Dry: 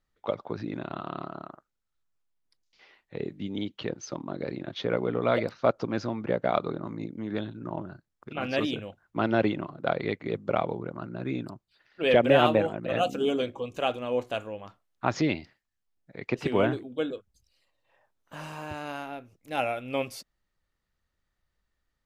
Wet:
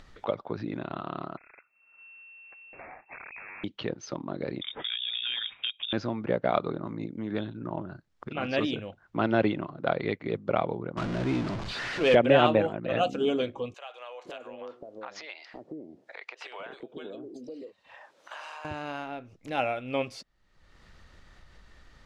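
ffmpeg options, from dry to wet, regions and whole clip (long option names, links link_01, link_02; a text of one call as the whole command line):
ffmpeg -i in.wav -filter_complex "[0:a]asettb=1/sr,asplit=3[link_01][link_02][link_03];[link_01]atrim=end=1.374[link_04];[link_02]atrim=start=1.37:end=3.64,asetpts=PTS-STARTPTS,afade=type=in:duration=0.004:curve=qsin,afade=type=out:start_time=2.266:duration=0.004:curve=qsin,acompressor=threshold=-45dB:ratio=10:attack=3.2:release=140:knee=1:detection=peak,aeval=exprs='(mod(282*val(0)+1,2)-1)/282':channel_layout=same,lowpass=frequency=2300:width_type=q:width=0.5098,lowpass=frequency=2300:width_type=q:width=0.6013,lowpass=frequency=2300:width_type=q:width=0.9,lowpass=frequency=2300:width_type=q:width=2.563,afreqshift=-2700[link_05];[link_03]atrim=start=3.636[link_06];[link_04][link_05]acrossfade=duration=0.004:curve1=hsin:curve2=qsin[link_07];[link_07][link_06]acrossfade=duration=0.004:curve1=qsin:curve2=hsin,asettb=1/sr,asplit=3[link_08][link_09][link_10];[link_08]atrim=end=4.614[link_11];[link_09]atrim=start=4.61:end=5.93,asetpts=PTS-STARTPTS,afade=type=in:duration=0.004:curve=qsin,afade=type=out:start_time=1.316:duration=0.004:curve=qsin,acompressor=threshold=-27dB:ratio=6:attack=3.2:release=140:knee=1:detection=peak,lowpass=frequency=3200:width_type=q:width=0.5098,lowpass=frequency=3200:width_type=q:width=0.6013,lowpass=frequency=3200:width_type=q:width=0.9,lowpass=frequency=3200:width_type=q:width=2.563,afreqshift=-3800[link_12];[link_10]atrim=start=5.926[link_13];[link_11][link_12]acrossfade=duration=0.004:curve1=hsin:curve2=qsin[link_14];[link_14][link_13]acrossfade=duration=0.004:curve1=qsin:curve2=hsin,asettb=1/sr,asplit=3[link_15][link_16][link_17];[link_15]atrim=end=10.974[link_18];[link_16]atrim=start=10.97:end=12.15,asetpts=PTS-STARTPTS,afade=type=in:duration=0.004:curve=qsin,afade=type=out:start_time=1.176:duration=0.004:curve=qsin,aeval=exprs='val(0)+0.5*0.0376*sgn(val(0))':channel_layout=same,adynamicsmooth=sensitivity=5.5:basefreq=4400[link_19];[link_17]atrim=start=12.146[link_20];[link_18][link_19]acrossfade=duration=0.004:curve1=hsin:curve2=qsin[link_21];[link_21][link_20]acrossfade=duration=0.004:curve1=qsin:curve2=hsin,asettb=1/sr,asplit=3[link_22][link_23][link_24];[link_22]atrim=end=13.744[link_25];[link_23]atrim=start=13.74:end=18.65,asetpts=PTS-STARTPTS,afade=type=in:duration=0.004:curve=qsin,afade=type=out:start_time=4.906:duration=0.004:curve=qsin,highpass=370,acompressor=threshold=-49dB:ratio=2.5:attack=3.2:release=140:knee=1:detection=peak,acrossover=split=570[link_26][link_27];[link_26]adelay=510[link_28];[link_28][link_27]amix=inputs=2:normalize=0,atrim=end_sample=216531[link_29];[link_24]atrim=start=18.646[link_30];[link_25][link_29]acrossfade=duration=0.004:curve1=hsin:curve2=qsin[link_31];[link_31][link_30]acrossfade=duration=0.004:curve1=qsin:curve2=hsin,lowpass=5600,acompressor=mode=upward:threshold=-32dB:ratio=2.5" out.wav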